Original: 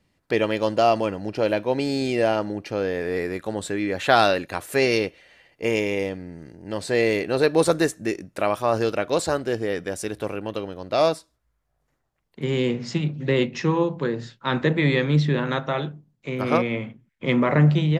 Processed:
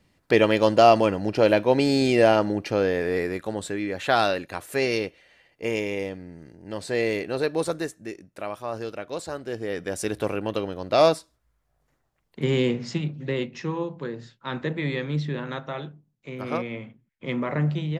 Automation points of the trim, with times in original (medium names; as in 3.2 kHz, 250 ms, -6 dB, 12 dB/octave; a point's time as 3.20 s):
2.67 s +3.5 dB
3.95 s -4 dB
7.21 s -4 dB
7.99 s -10 dB
9.30 s -10 dB
10.09 s +2 dB
12.44 s +2 dB
13.47 s -7.5 dB